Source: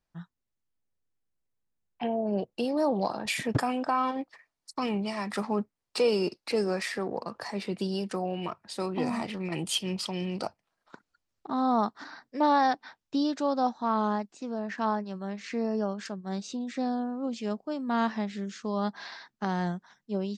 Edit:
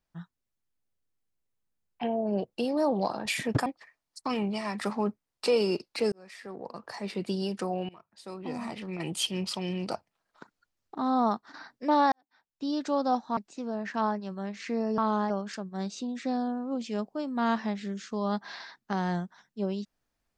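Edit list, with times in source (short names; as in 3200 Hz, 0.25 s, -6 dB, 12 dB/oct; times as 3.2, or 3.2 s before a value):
3.66–4.18 cut
6.64–7.76 fade in
8.41–9.83 fade in, from -22 dB
11.71–12.06 fade out equal-power, to -10.5 dB
12.64–13.36 fade in quadratic
13.89–14.21 move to 15.82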